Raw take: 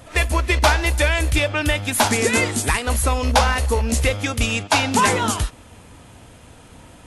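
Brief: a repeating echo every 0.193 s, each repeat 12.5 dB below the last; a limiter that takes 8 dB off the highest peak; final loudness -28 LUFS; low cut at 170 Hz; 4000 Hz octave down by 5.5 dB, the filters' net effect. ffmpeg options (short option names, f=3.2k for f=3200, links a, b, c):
-af "highpass=170,equalizer=f=4k:t=o:g=-7.5,alimiter=limit=-12.5dB:level=0:latency=1,aecho=1:1:193|386|579:0.237|0.0569|0.0137,volume=-5dB"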